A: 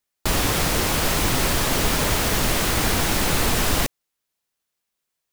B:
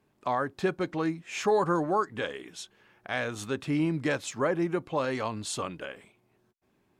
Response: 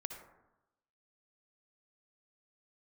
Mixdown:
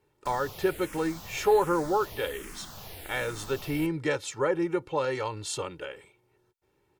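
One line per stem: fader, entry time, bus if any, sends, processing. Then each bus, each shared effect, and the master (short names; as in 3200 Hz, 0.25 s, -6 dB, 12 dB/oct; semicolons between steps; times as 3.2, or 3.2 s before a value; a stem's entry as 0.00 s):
-13.5 dB, 0.00 s, no send, bell 12000 Hz +5.5 dB 0.4 oct; endless phaser -1.3 Hz; auto duck -7 dB, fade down 0.30 s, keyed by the second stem
-1.5 dB, 0.00 s, no send, comb 2.2 ms, depth 78%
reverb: off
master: dry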